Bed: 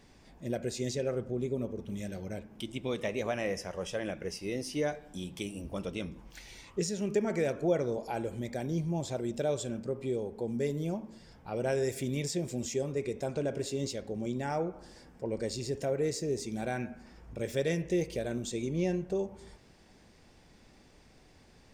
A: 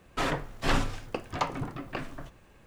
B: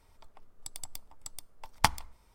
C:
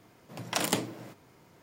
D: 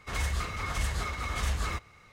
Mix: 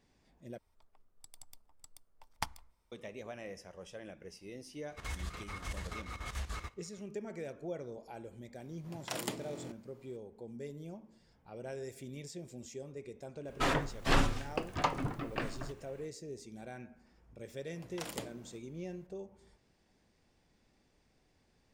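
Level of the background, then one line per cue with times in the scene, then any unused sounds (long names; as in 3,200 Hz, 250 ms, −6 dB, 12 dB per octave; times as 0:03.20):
bed −12.5 dB
0:00.58: overwrite with B −13 dB
0:04.90: mix in D −9 dB + square-wave tremolo 6.9 Hz, depth 65%, duty 70%
0:08.55: mix in C −10 dB + buffer that repeats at 0:00.82, samples 1,024, times 14
0:13.43: mix in A −1.5 dB, fades 0.05 s
0:17.45: mix in C −14 dB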